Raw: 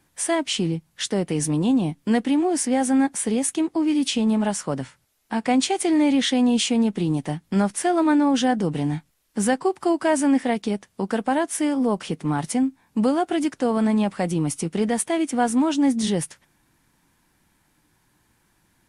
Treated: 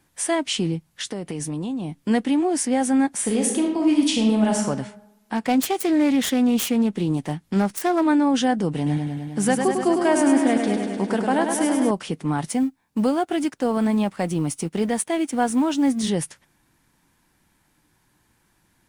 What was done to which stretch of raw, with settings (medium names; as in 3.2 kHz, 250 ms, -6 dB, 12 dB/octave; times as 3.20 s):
0.91–2.05 s: compression, threshold -25 dBFS
3.12–4.64 s: reverb throw, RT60 1 s, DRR 1.5 dB
5.35–8.08 s: self-modulated delay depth 0.16 ms
8.76–11.91 s: modulated delay 102 ms, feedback 74%, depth 55 cents, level -5.5 dB
12.49–16.09 s: companding laws mixed up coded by A